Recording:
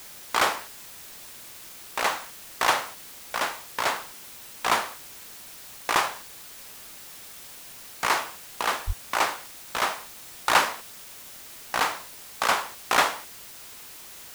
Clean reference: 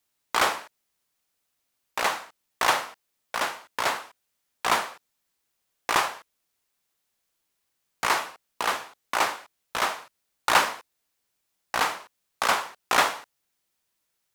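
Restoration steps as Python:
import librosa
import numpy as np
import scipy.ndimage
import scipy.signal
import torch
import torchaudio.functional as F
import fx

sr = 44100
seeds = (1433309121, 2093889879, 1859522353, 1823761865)

y = fx.fix_deplosive(x, sr, at_s=(8.86,))
y = fx.noise_reduce(y, sr, print_start_s=5.38, print_end_s=5.88, reduce_db=30.0)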